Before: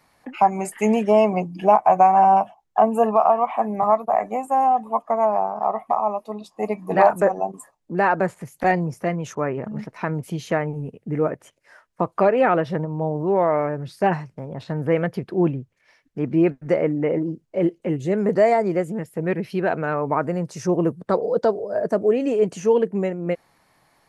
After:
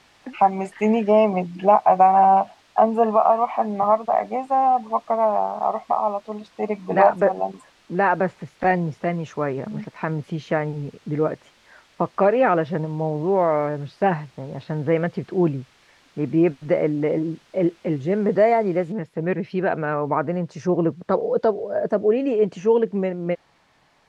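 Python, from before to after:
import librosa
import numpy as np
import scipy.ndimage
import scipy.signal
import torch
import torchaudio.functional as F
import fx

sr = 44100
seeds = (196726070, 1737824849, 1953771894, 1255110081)

y = fx.noise_floor_step(x, sr, seeds[0], at_s=18.92, before_db=-50, after_db=-59, tilt_db=0.0)
y = scipy.signal.sosfilt(scipy.signal.butter(2, 3900.0, 'lowpass', fs=sr, output='sos'), y)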